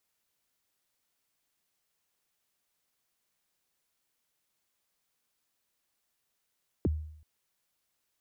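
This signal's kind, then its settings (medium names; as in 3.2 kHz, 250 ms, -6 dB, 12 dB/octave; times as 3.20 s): kick drum length 0.38 s, from 460 Hz, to 77 Hz, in 27 ms, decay 0.68 s, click off, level -22 dB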